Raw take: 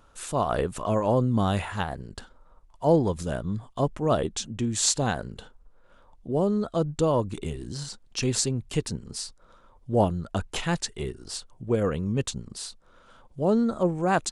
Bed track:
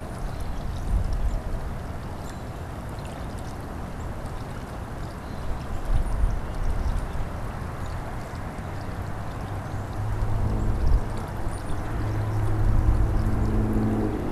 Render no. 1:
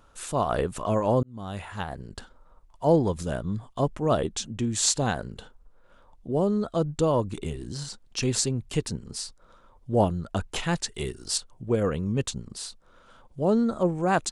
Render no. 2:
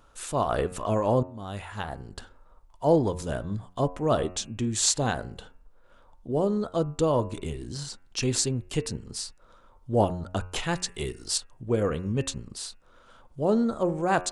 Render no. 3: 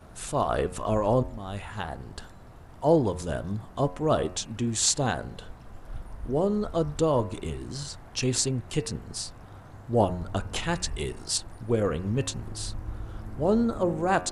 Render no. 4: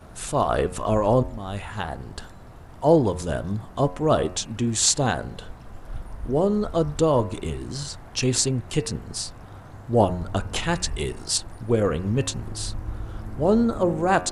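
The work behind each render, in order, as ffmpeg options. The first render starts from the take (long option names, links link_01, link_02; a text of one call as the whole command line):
ffmpeg -i in.wav -filter_complex "[0:a]asettb=1/sr,asplit=3[link_01][link_02][link_03];[link_01]atrim=end=10.944[link_04];[link_02]atrim=start=10.94:end=11.38,asetpts=PTS-STARTPTS,afade=type=in:duration=0.004:curve=qsin,afade=type=out:start_time=0.436:duration=0.004:curve=qsin,highshelf=frequency=2700:gain=9.5[link_05];[link_03]atrim=start=11.376[link_06];[link_04][link_05]acrossfade=duration=0.004:curve1=hsin:curve2=qsin[link_07];[link_07][link_06]acrossfade=duration=0.004:curve1=qsin:curve2=hsin,asplit=2[link_08][link_09];[link_08]atrim=end=1.23,asetpts=PTS-STARTPTS,afade=type=out:start_time=1.226:duration=0.004:curve=hsin[link_10];[link_09]atrim=start=1.23,asetpts=PTS-STARTPTS,afade=type=in:duration=0.89[link_11];[link_10][link_11]concat=n=2:v=0:a=1" out.wav
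ffmpeg -i in.wav -af "equalizer=frequency=180:width_type=o:width=0.43:gain=-4,bandreject=frequency=90.5:width_type=h:width=4,bandreject=frequency=181:width_type=h:width=4,bandreject=frequency=271.5:width_type=h:width=4,bandreject=frequency=362:width_type=h:width=4,bandreject=frequency=452.5:width_type=h:width=4,bandreject=frequency=543:width_type=h:width=4,bandreject=frequency=633.5:width_type=h:width=4,bandreject=frequency=724:width_type=h:width=4,bandreject=frequency=814.5:width_type=h:width=4,bandreject=frequency=905:width_type=h:width=4,bandreject=frequency=995.5:width_type=h:width=4,bandreject=frequency=1086:width_type=h:width=4,bandreject=frequency=1176.5:width_type=h:width=4,bandreject=frequency=1267:width_type=h:width=4,bandreject=frequency=1357.5:width_type=h:width=4,bandreject=frequency=1448:width_type=h:width=4,bandreject=frequency=1538.5:width_type=h:width=4,bandreject=frequency=1629:width_type=h:width=4,bandreject=frequency=1719.5:width_type=h:width=4,bandreject=frequency=1810:width_type=h:width=4,bandreject=frequency=1900.5:width_type=h:width=4,bandreject=frequency=1991:width_type=h:width=4,bandreject=frequency=2081.5:width_type=h:width=4,bandreject=frequency=2172:width_type=h:width=4,bandreject=frequency=2262.5:width_type=h:width=4,bandreject=frequency=2353:width_type=h:width=4,bandreject=frequency=2443.5:width_type=h:width=4,bandreject=frequency=2534:width_type=h:width=4,bandreject=frequency=2624.5:width_type=h:width=4,bandreject=frequency=2715:width_type=h:width=4,bandreject=frequency=2805.5:width_type=h:width=4" out.wav
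ffmpeg -i in.wav -i bed.wav -filter_complex "[1:a]volume=-15dB[link_01];[0:a][link_01]amix=inputs=2:normalize=0" out.wav
ffmpeg -i in.wav -af "volume=4dB" out.wav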